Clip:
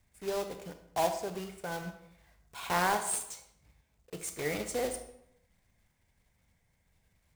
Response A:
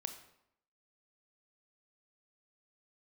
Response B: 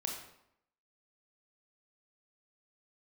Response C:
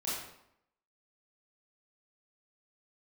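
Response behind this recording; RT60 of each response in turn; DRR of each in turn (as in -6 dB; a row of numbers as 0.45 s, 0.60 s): A; 0.75 s, 0.75 s, 0.75 s; 7.0 dB, 0.5 dB, -9.0 dB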